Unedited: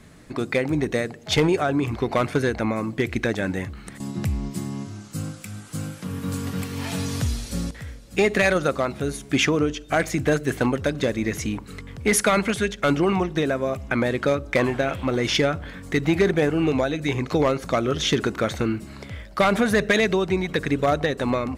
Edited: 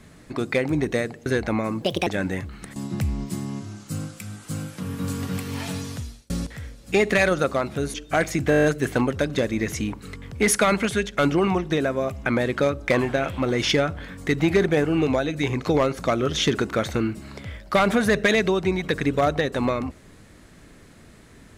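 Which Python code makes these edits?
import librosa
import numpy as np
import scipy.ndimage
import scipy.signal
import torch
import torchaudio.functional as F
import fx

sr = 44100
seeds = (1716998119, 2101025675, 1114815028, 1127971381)

y = fx.edit(x, sr, fx.cut(start_s=1.26, length_s=1.12),
    fx.speed_span(start_s=2.94, length_s=0.37, speed=1.49),
    fx.fade_out_span(start_s=6.77, length_s=0.77),
    fx.cut(start_s=9.18, length_s=0.55),
    fx.stutter(start_s=10.29, slice_s=0.02, count=8), tone=tone)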